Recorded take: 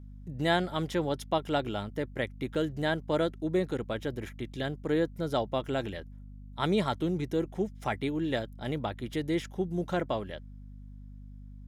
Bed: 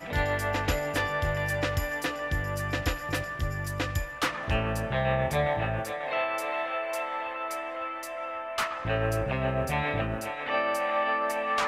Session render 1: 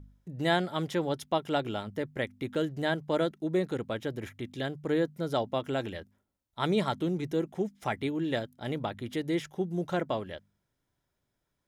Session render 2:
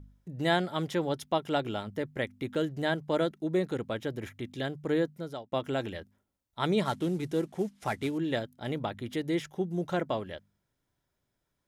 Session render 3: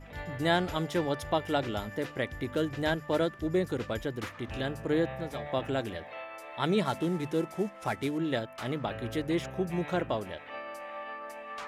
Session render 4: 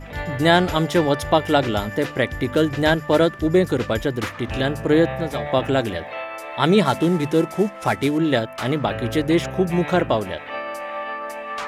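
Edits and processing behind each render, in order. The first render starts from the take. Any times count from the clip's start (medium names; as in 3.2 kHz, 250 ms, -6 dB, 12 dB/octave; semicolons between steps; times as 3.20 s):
de-hum 50 Hz, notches 5
5.00–5.52 s: fade out; 6.85–8.18 s: CVSD coder 64 kbps
add bed -13.5 dB
trim +11.5 dB; peak limiter -2 dBFS, peak gain reduction 1.5 dB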